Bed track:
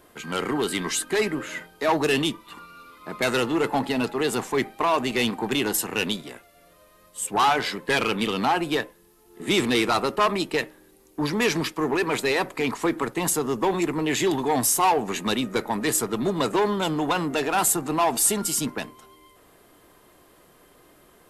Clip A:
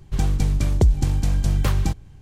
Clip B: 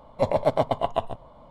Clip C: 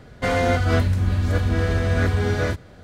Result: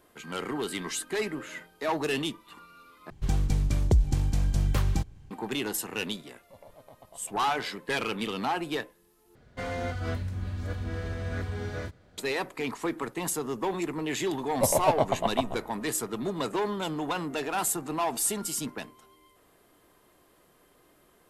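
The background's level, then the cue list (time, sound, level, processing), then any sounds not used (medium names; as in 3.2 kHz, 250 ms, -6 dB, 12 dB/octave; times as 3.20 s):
bed track -7 dB
3.10 s: replace with A -5.5 dB
6.31 s: add B -18 dB + level held to a coarse grid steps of 16 dB
9.35 s: replace with C -13 dB
14.41 s: add B -2.5 dB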